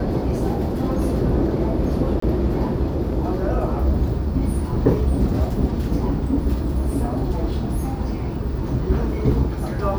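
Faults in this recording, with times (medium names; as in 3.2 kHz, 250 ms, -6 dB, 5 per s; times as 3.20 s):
2.20–2.22 s: dropout 24 ms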